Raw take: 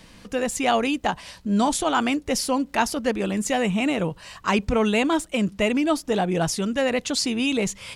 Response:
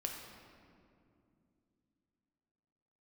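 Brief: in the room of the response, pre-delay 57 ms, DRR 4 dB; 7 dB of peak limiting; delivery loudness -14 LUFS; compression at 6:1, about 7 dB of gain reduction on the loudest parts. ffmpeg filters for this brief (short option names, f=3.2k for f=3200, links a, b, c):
-filter_complex "[0:a]acompressor=threshold=-24dB:ratio=6,alimiter=limit=-20.5dB:level=0:latency=1,asplit=2[a][b];[1:a]atrim=start_sample=2205,adelay=57[c];[b][c]afir=irnorm=-1:irlink=0,volume=-4dB[d];[a][d]amix=inputs=2:normalize=0,volume=14.5dB"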